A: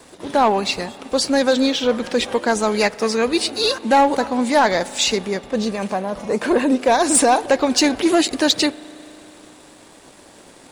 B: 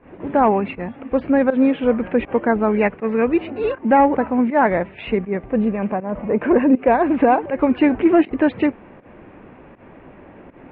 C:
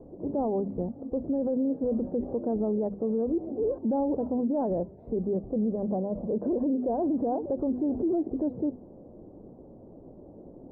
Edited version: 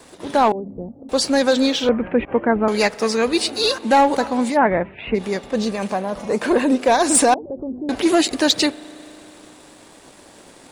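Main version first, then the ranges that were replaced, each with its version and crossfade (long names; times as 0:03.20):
A
0:00.52–0:01.09: punch in from C
0:01.89–0:02.68: punch in from B
0:04.53–0:05.19: punch in from B, crossfade 0.10 s
0:07.34–0:07.89: punch in from C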